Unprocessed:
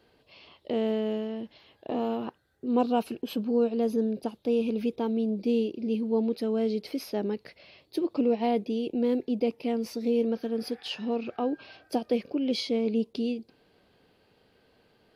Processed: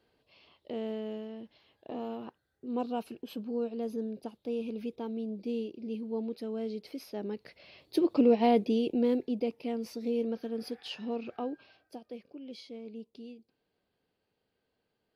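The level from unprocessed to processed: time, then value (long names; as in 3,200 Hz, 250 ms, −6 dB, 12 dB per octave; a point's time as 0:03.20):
0:07.12 −8.5 dB
0:07.98 +2 dB
0:08.74 +2 dB
0:09.50 −5.5 dB
0:11.38 −5.5 dB
0:11.97 −17 dB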